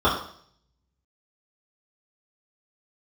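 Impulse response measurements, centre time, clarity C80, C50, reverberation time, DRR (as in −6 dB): 35 ms, 9.0 dB, 5.0 dB, 0.60 s, −10.5 dB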